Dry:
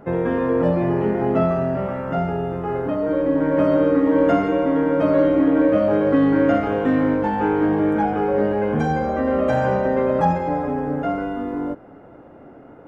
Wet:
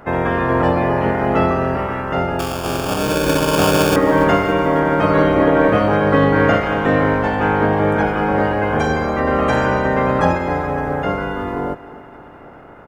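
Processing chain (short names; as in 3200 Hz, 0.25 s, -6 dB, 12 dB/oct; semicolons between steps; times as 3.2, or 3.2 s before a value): spectral limiter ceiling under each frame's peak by 16 dB; 2.39–3.96 sample-rate reducer 2000 Hz, jitter 0%; feedback echo 0.28 s, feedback 57%, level -18 dB; gain +3 dB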